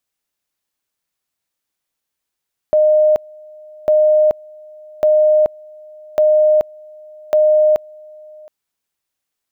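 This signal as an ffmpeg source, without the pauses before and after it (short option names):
-f lavfi -i "aevalsrc='pow(10,(-8.5-27*gte(mod(t,1.15),0.43))/20)*sin(2*PI*613*t)':d=5.75:s=44100"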